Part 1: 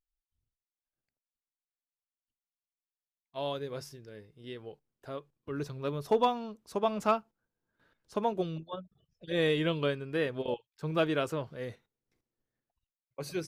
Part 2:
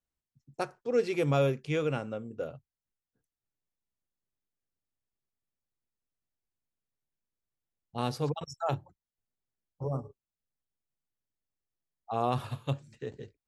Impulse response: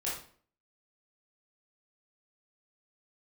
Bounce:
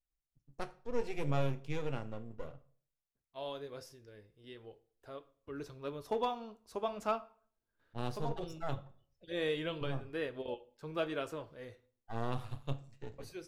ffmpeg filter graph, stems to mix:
-filter_complex "[0:a]dynaudnorm=framelen=510:gausssize=9:maxgain=3.5dB,equalizer=frequency=150:width=1.3:gain=-9.5,volume=-6.5dB,asplit=2[link_01][link_02];[link_02]volume=-17.5dB[link_03];[1:a]aeval=exprs='if(lt(val(0),0),0.251*val(0),val(0))':channel_layout=same,volume=-3.5dB,asplit=3[link_04][link_05][link_06];[link_05]volume=-16dB[link_07];[link_06]apad=whole_len=594146[link_08];[link_01][link_08]sidechaincompress=threshold=-36dB:ratio=8:attack=25:release=419[link_09];[2:a]atrim=start_sample=2205[link_10];[link_03][link_07]amix=inputs=2:normalize=0[link_11];[link_11][link_10]afir=irnorm=-1:irlink=0[link_12];[link_09][link_04][link_12]amix=inputs=3:normalize=0,lowshelf=frequency=100:gain=10,flanger=delay=5.8:depth=3.8:regen=-75:speed=0.7:shape=triangular"

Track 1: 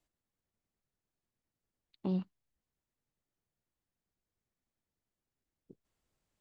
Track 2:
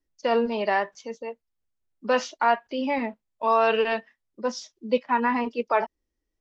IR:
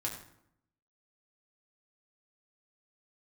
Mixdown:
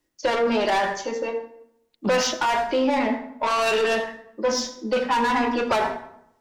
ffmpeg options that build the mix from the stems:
-filter_complex "[0:a]volume=-2dB,asplit=2[link_01][link_02];[1:a]highpass=230,acontrast=32,aeval=exprs='(tanh(11.2*val(0)+0.1)-tanh(0.1))/11.2':channel_layout=same,volume=0.5dB,asplit=2[link_03][link_04];[link_04]volume=-3.5dB[link_05];[link_02]apad=whole_len=282436[link_06];[link_03][link_06]sidechaingate=range=-13dB:threshold=-59dB:ratio=16:detection=peak[link_07];[2:a]atrim=start_sample=2205[link_08];[link_05][link_08]afir=irnorm=-1:irlink=0[link_09];[link_01][link_07][link_09]amix=inputs=3:normalize=0,acontrast=61,alimiter=limit=-14.5dB:level=0:latency=1:release=13"

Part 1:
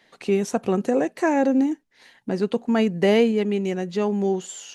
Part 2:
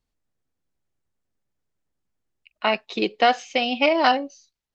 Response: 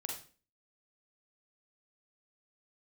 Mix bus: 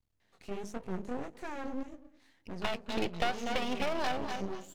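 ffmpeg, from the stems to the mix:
-filter_complex "[0:a]bandreject=frequency=51.36:width_type=h:width=4,bandreject=frequency=102.72:width_type=h:width=4,bandreject=frequency=154.08:width_type=h:width=4,bandreject=frequency=205.44:width_type=h:width=4,bandreject=frequency=256.8:width_type=h:width=4,bandreject=frequency=308.16:width_type=h:width=4,bandreject=frequency=359.52:width_type=h:width=4,bandreject=frequency=410.88:width_type=h:width=4,bandreject=frequency=462.24:width_type=h:width=4,bandreject=frequency=513.6:width_type=h:width=4,asoftclip=type=tanh:threshold=-16.5dB,flanger=delay=17.5:depth=7.5:speed=1.7,adelay=200,volume=-10dB,asplit=2[link_01][link_02];[link_02]volume=-23.5dB[link_03];[1:a]volume=-2dB,asplit=2[link_04][link_05];[link_05]volume=-12.5dB[link_06];[link_03][link_06]amix=inputs=2:normalize=0,aecho=0:1:242|484|726:1|0.19|0.0361[link_07];[link_01][link_04][link_07]amix=inputs=3:normalize=0,equalizer=frequency=85:width_type=o:width=1.7:gain=11,acrossover=split=880|2400|5200[link_08][link_09][link_10][link_11];[link_08]acompressor=threshold=-27dB:ratio=4[link_12];[link_09]acompressor=threshold=-35dB:ratio=4[link_13];[link_10]acompressor=threshold=-41dB:ratio=4[link_14];[link_11]acompressor=threshold=-49dB:ratio=4[link_15];[link_12][link_13][link_14][link_15]amix=inputs=4:normalize=0,aeval=exprs='max(val(0),0)':channel_layout=same"

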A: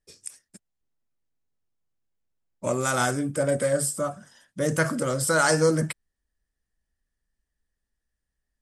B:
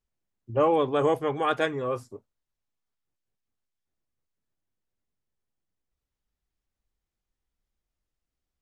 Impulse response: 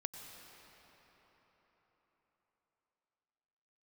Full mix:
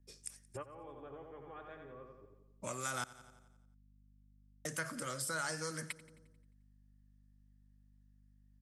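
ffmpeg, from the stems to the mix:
-filter_complex "[0:a]volume=-6dB,asplit=3[link_01][link_02][link_03];[link_01]atrim=end=3.04,asetpts=PTS-STARTPTS,afade=type=out:start_time=3.036:duration=0.004:curve=hsin[link_04];[link_02]atrim=start=3.04:end=4.65,asetpts=PTS-STARTPTS,volume=0[link_05];[link_03]atrim=start=4.65,asetpts=PTS-STARTPTS,afade=type=in:duration=0.004:curve=hsin[link_06];[link_04][link_05][link_06]concat=n=3:v=0:a=1,asplit=3[link_07][link_08][link_09];[link_08]volume=-20.5dB[link_10];[1:a]acompressor=threshold=-38dB:ratio=1.5,lowpass=2300,volume=-4.5dB,asplit=2[link_11][link_12];[link_12]volume=-14.5dB[link_13];[link_09]apad=whole_len=380080[link_14];[link_11][link_14]sidechaingate=range=-33dB:threshold=-58dB:ratio=16:detection=peak[link_15];[link_10][link_13]amix=inputs=2:normalize=0,aecho=0:1:88|176|264|352|440|528|616|704:1|0.54|0.292|0.157|0.085|0.0459|0.0248|0.0134[link_16];[link_07][link_15][link_16]amix=inputs=3:normalize=0,aeval=exprs='val(0)+0.000631*(sin(2*PI*50*n/s)+sin(2*PI*2*50*n/s)/2+sin(2*PI*3*50*n/s)/3+sin(2*PI*4*50*n/s)/4+sin(2*PI*5*50*n/s)/5)':channel_layout=same,equalizer=frequency=8100:width=5.1:gain=-3,acrossover=split=210|1100[link_17][link_18][link_19];[link_17]acompressor=threshold=-52dB:ratio=4[link_20];[link_18]acompressor=threshold=-49dB:ratio=4[link_21];[link_19]acompressor=threshold=-38dB:ratio=4[link_22];[link_20][link_21][link_22]amix=inputs=3:normalize=0"

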